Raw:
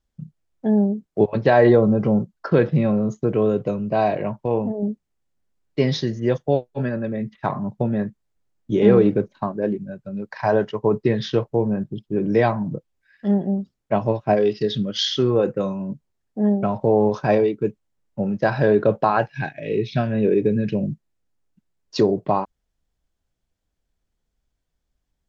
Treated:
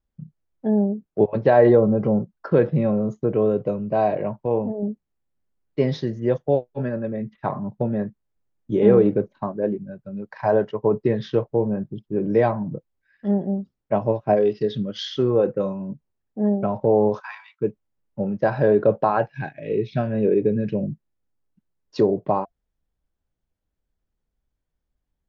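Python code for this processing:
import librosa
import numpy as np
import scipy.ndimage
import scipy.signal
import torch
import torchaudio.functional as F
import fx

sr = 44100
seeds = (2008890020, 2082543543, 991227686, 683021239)

y = fx.steep_highpass(x, sr, hz=930.0, slope=72, at=(17.19, 17.6), fade=0.02)
y = fx.high_shelf(y, sr, hz=3000.0, db=-11.0)
y = fx.notch(y, sr, hz=690.0, q=23.0)
y = fx.dynamic_eq(y, sr, hz=570.0, q=1.3, threshold_db=-30.0, ratio=4.0, max_db=4)
y = y * librosa.db_to_amplitude(-2.5)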